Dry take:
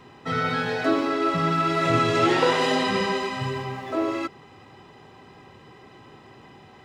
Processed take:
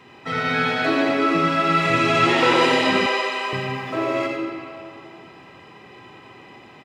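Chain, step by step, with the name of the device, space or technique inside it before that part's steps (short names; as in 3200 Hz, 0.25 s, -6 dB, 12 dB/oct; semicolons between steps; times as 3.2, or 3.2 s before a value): PA in a hall (HPF 140 Hz 6 dB/oct; bell 2400 Hz +6.5 dB 0.73 oct; echo 90 ms -6.5 dB; reverb RT60 2.6 s, pre-delay 48 ms, DRR 1 dB); 3.06–3.53 HPF 380 Hz 24 dB/oct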